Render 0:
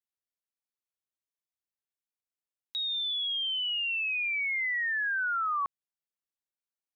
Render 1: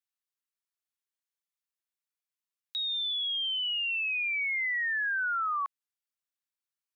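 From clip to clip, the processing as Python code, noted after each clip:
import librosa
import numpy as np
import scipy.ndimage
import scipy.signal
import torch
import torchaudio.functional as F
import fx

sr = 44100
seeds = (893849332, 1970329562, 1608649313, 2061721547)

y = scipy.signal.sosfilt(scipy.signal.butter(4, 970.0, 'highpass', fs=sr, output='sos'), x)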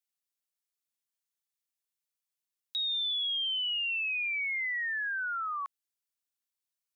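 y = fx.high_shelf(x, sr, hz=2600.0, db=9.5)
y = y * librosa.db_to_amplitude(-6.0)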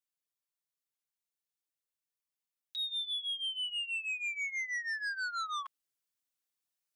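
y = fx.rider(x, sr, range_db=10, speed_s=0.5)
y = y + 0.72 * np.pad(y, (int(6.7 * sr / 1000.0), 0))[:len(y)]
y = fx.transformer_sat(y, sr, knee_hz=2300.0)
y = y * librosa.db_to_amplitude(-5.0)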